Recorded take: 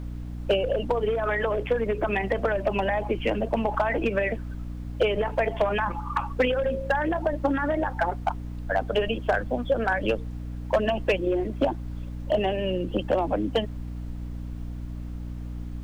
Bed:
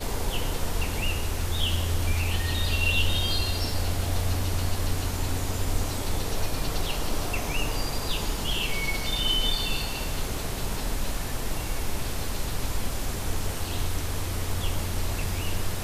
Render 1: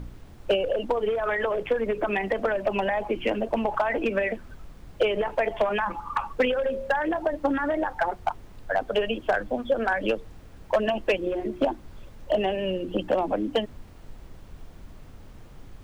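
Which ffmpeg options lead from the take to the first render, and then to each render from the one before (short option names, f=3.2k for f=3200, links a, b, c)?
-af "bandreject=f=60:t=h:w=4,bandreject=f=120:t=h:w=4,bandreject=f=180:t=h:w=4,bandreject=f=240:t=h:w=4,bandreject=f=300:t=h:w=4,bandreject=f=360:t=h:w=4"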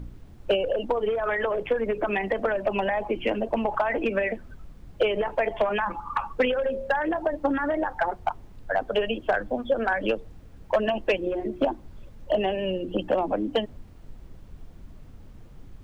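-af "afftdn=nr=6:nf=-47"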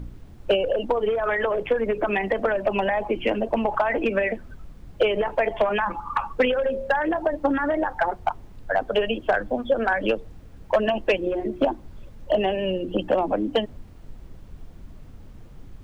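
-af "volume=2.5dB"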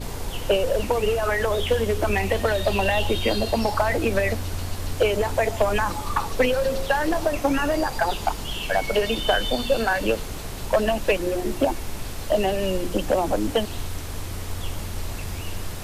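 -filter_complex "[1:a]volume=-2.5dB[a];[0:a][a]amix=inputs=2:normalize=0"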